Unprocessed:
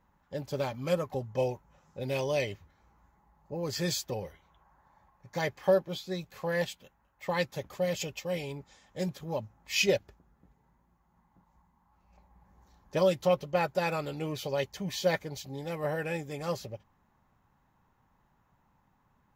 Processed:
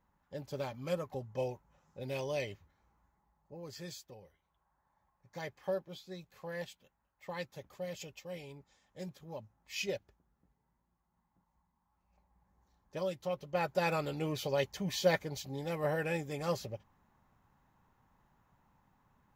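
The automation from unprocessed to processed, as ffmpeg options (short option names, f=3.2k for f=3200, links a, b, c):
-af "volume=11dB,afade=t=out:st=2.5:d=1.68:silence=0.251189,afade=t=in:st=4.18:d=1.17:silence=0.421697,afade=t=in:st=13.33:d=0.58:silence=0.316228"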